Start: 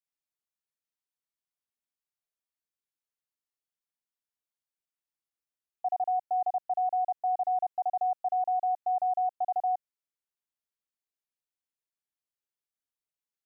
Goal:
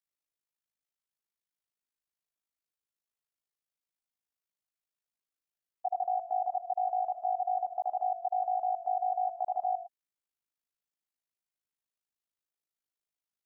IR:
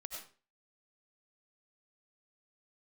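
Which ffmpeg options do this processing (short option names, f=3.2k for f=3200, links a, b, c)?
-filter_complex "[0:a]tremolo=f=53:d=0.857,asplit=2[a][b];[1:a]atrim=start_sample=2205,afade=t=out:st=0.17:d=0.01,atrim=end_sample=7938[c];[b][c]afir=irnorm=-1:irlink=0,volume=-1dB[d];[a][d]amix=inputs=2:normalize=0,volume=-2dB"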